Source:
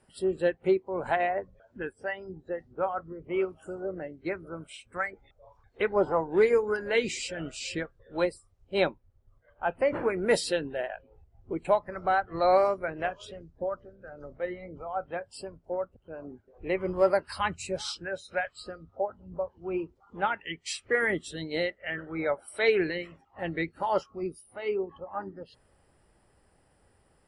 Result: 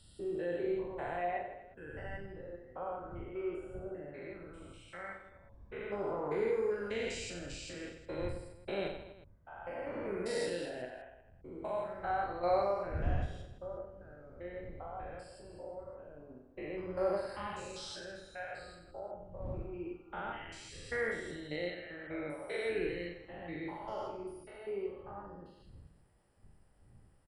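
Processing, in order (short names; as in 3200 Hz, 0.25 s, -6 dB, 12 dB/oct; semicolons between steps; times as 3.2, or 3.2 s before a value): stepped spectrum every 0.2 s; wind noise 95 Hz -43 dBFS; reverse bouncing-ball echo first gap 40 ms, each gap 1.3×, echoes 5; gain -8 dB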